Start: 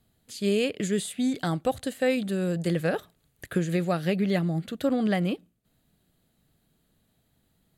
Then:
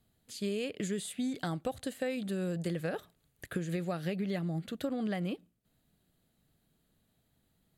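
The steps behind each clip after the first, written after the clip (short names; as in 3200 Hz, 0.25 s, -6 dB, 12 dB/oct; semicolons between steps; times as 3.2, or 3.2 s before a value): compressor, threshold -26 dBFS, peak gain reduction 7 dB; gain -4.5 dB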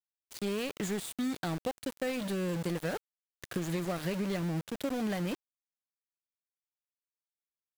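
in parallel at -3 dB: limiter -33 dBFS, peak gain reduction 10.5 dB; on the sum: sample gate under -34.5 dBFS; gain -1.5 dB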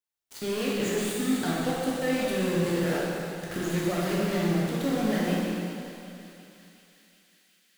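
thinning echo 0.367 s, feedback 80%, high-pass 1100 Hz, level -16 dB; plate-style reverb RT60 2.7 s, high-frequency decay 0.9×, DRR -6.5 dB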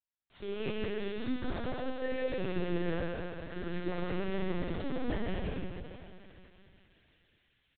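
echo 0.149 s -5.5 dB; LPC vocoder at 8 kHz pitch kept; gain -7.5 dB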